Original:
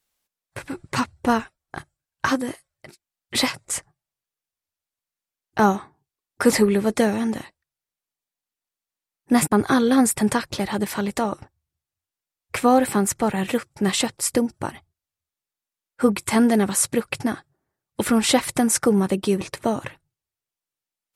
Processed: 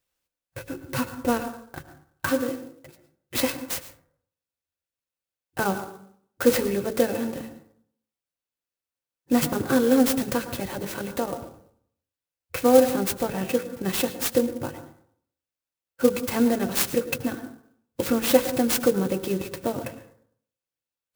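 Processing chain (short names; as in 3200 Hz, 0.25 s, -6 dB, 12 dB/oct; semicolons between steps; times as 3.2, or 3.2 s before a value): bell 1200 Hz -7.5 dB 2.9 oct; notch comb 210 Hz; de-hum 55.05 Hz, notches 10; small resonant body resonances 520/1500/2600 Hz, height 10 dB; reverb RT60 0.60 s, pre-delay 97 ms, DRR 11 dB; clock jitter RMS 0.045 ms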